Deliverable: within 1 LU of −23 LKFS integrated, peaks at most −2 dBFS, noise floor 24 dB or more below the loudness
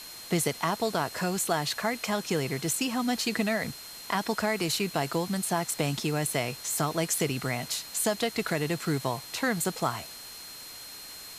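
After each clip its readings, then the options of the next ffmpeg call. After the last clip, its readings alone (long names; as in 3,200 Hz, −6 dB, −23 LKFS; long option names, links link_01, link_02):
interfering tone 4,200 Hz; level of the tone −45 dBFS; background noise floor −44 dBFS; target noise floor −53 dBFS; integrated loudness −29.0 LKFS; sample peak −11.5 dBFS; target loudness −23.0 LKFS
→ -af "bandreject=frequency=4200:width=30"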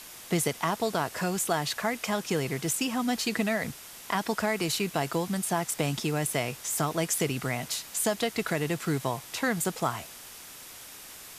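interfering tone none found; background noise floor −46 dBFS; target noise floor −54 dBFS
→ -af "afftdn=noise_reduction=8:noise_floor=-46"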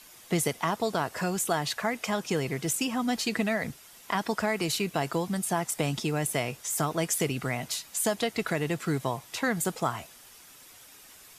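background noise floor −52 dBFS; target noise floor −54 dBFS
→ -af "afftdn=noise_reduction=6:noise_floor=-52"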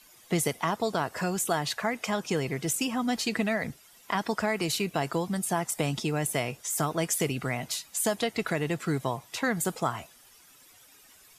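background noise floor −57 dBFS; integrated loudness −29.5 LKFS; sample peak −12.0 dBFS; target loudness −23.0 LKFS
→ -af "volume=6.5dB"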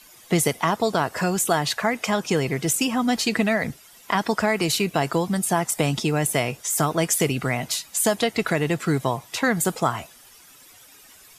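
integrated loudness −23.0 LKFS; sample peak −5.5 dBFS; background noise floor −50 dBFS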